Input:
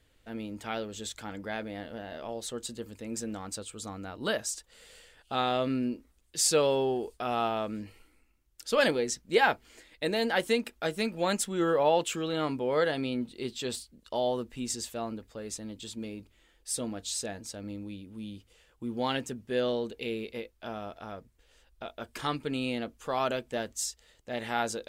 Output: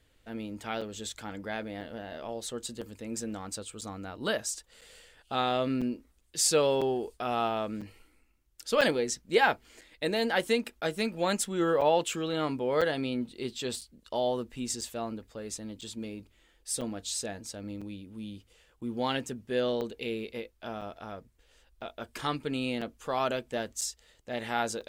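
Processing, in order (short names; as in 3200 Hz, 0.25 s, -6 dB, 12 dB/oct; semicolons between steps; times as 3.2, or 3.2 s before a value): crackling interface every 1.00 s, samples 256, zero, from 0.81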